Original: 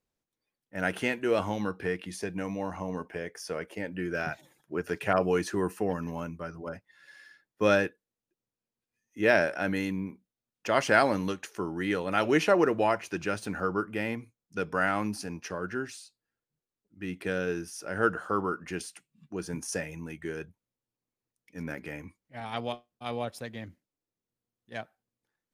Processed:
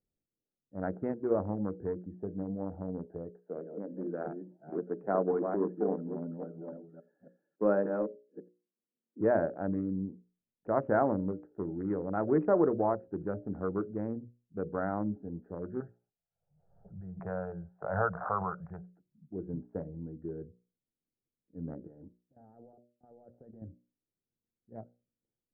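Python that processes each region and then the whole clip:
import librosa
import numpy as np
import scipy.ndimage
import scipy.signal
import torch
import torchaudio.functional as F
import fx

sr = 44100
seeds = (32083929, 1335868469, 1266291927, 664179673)

y = fx.chain(x, sr, fx.reverse_delay(ms=280, wet_db=-5),
    fx.highpass(hz=190.0, slope=24),
    fx.echo_single(ms=86, db=-23.5), at=(3.36, 9.21))
y = fx.chain(y, sr, fx.curve_eq(hz=(180.0, 270.0, 690.0, 2700.0), db=(0, -28, 9, 1)),
    fx.pre_swell(db_per_s=60.0), at=(15.8, 18.86))
y = fx.chain(y, sr, fx.low_shelf(hz=150.0, db=-12.0),
    fx.transient(attack_db=-7, sustain_db=4),
    fx.level_steps(step_db=16), at=(21.87, 23.62))
y = fx.wiener(y, sr, points=41)
y = scipy.signal.sosfilt(scipy.signal.bessel(8, 780.0, 'lowpass', norm='mag', fs=sr, output='sos'), y)
y = fx.hum_notches(y, sr, base_hz=60, count=10)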